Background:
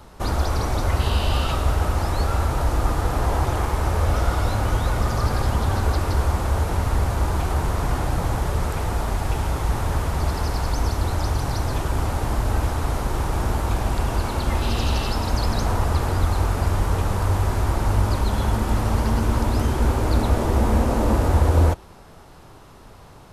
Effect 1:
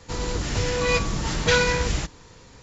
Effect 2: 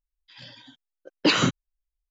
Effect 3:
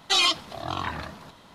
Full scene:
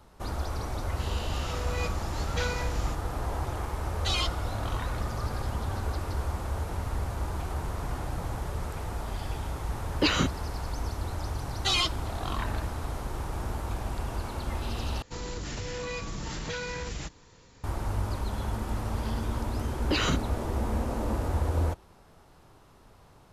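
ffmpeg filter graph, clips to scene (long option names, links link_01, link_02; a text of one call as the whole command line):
ffmpeg -i bed.wav -i cue0.wav -i cue1.wav -i cue2.wav -filter_complex "[1:a]asplit=2[link_01][link_02];[3:a]asplit=2[link_03][link_04];[2:a]asplit=2[link_05][link_06];[0:a]volume=-10.5dB[link_07];[link_02]acompressor=threshold=-23dB:ratio=6:attack=3.2:release=140:knee=1:detection=peak[link_08];[link_06]alimiter=level_in=11.5dB:limit=-1dB:release=50:level=0:latency=1[link_09];[link_07]asplit=2[link_10][link_11];[link_10]atrim=end=15.024[link_12];[link_08]atrim=end=2.62,asetpts=PTS-STARTPTS,volume=-7.5dB[link_13];[link_11]atrim=start=17.636[link_14];[link_01]atrim=end=2.62,asetpts=PTS-STARTPTS,volume=-13dB,afade=type=in:duration=0.004:curve=hsin,afade=type=out:start_time=2.616:duration=0.004:curve=hsin,adelay=890[link_15];[link_03]atrim=end=1.54,asetpts=PTS-STARTPTS,volume=-9.5dB,afade=type=in:duration=0.004:curve=hsin,afade=type=out:start_time=1.536:duration=0.004:curve=hsin,adelay=3950[link_16];[link_05]atrim=end=2.1,asetpts=PTS-STARTPTS,volume=-4.5dB,afade=type=in:duration=0.004:curve=hsin,afade=type=out:start_time=2.096:duration=0.004:curve=hsin,adelay=8770[link_17];[link_04]atrim=end=1.54,asetpts=PTS-STARTPTS,volume=-5.5dB,afade=type=in:duration=0.004:curve=hsin,afade=type=out:start_time=1.536:duration=0.004:curve=hsin,adelay=11550[link_18];[link_09]atrim=end=2.1,asetpts=PTS-STARTPTS,volume=-16dB,afade=type=in:duration=0.004:curve=hsin,afade=type=out:start_time=2.096:duration=0.004:curve=hsin,adelay=18660[link_19];[link_12][link_13]acrossfade=duration=0.004:curve1=hsin:curve2=hsin[link_20];[link_20][link_14]acrossfade=duration=0.004:curve1=hsin:curve2=hsin[link_21];[link_21][link_15][link_16][link_17][link_18][link_19]amix=inputs=6:normalize=0" out.wav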